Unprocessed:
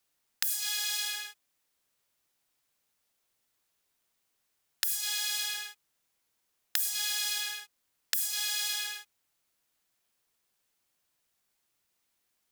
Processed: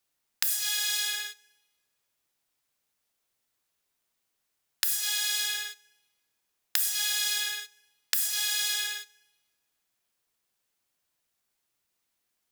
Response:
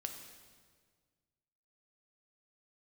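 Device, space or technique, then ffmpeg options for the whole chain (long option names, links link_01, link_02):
keyed gated reverb: -filter_complex "[0:a]asplit=3[link_01][link_02][link_03];[1:a]atrim=start_sample=2205[link_04];[link_02][link_04]afir=irnorm=-1:irlink=0[link_05];[link_03]apad=whole_len=551727[link_06];[link_05][link_06]sidechaingate=range=-14dB:threshold=-44dB:ratio=16:detection=peak,volume=4dB[link_07];[link_01][link_07]amix=inputs=2:normalize=0,volume=-3.5dB"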